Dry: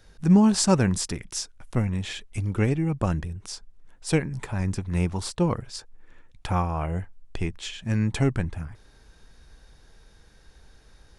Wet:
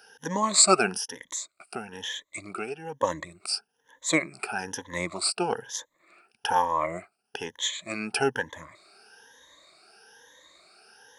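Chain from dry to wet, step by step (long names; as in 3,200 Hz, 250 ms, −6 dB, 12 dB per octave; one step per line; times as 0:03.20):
rippled gain that drifts along the octave scale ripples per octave 1.1, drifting +1.1 Hz, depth 21 dB
high-pass filter 510 Hz 12 dB per octave
0:00.95–0:03.03: downward compressor 2.5 to 1, threshold −36 dBFS, peak gain reduction 10 dB
level +1.5 dB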